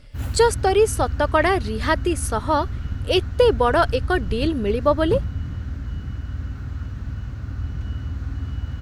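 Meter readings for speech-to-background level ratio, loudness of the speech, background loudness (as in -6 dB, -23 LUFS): 8.5 dB, -21.0 LUFS, -29.5 LUFS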